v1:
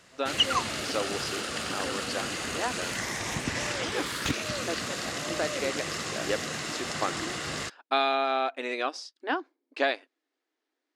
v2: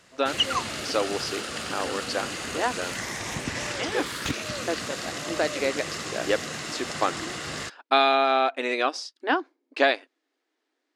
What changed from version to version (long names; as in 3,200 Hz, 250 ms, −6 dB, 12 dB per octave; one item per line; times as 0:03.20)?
speech +5.5 dB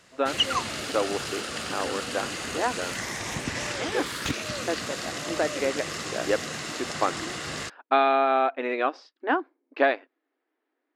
speech: add low-pass filter 2,000 Hz 12 dB per octave